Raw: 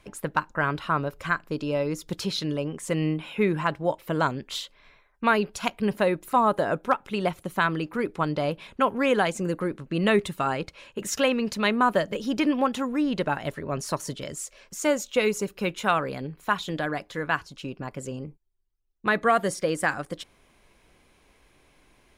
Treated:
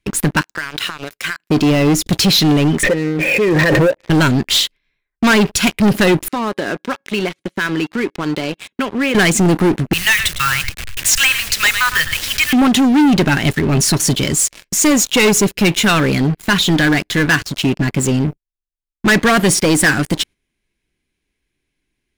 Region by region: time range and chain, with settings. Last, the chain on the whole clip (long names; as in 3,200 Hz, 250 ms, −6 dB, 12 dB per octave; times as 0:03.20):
0:00.41–0:01.50: high-pass filter 1,400 Hz 6 dB per octave + downward compressor 16 to 1, threshold −35 dBFS
0:02.83–0:04.10: formant resonators in series e + parametric band 610 Hz +6 dB 1.5 octaves + background raised ahead of every attack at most 37 dB per second
0:06.28–0:09.15: tuned comb filter 550 Hz, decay 0.24 s, mix 50% + downward compressor 2 to 1, threshold −34 dBFS + band-pass filter 240–5,500 Hz
0:09.93–0:12.53: hold until the input has moved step −36.5 dBFS + inverse Chebyshev band-stop filter 210–600 Hz, stop band 50 dB + single-tap delay 106 ms −15 dB
whole clip: noise gate −50 dBFS, range −7 dB; flat-topped bell 800 Hz −11.5 dB; leveller curve on the samples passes 5; level +4 dB